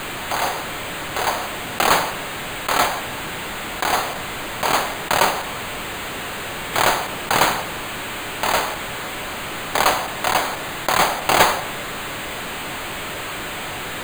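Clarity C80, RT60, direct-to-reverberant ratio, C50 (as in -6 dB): 16.0 dB, 1.5 s, 9.5 dB, 14.5 dB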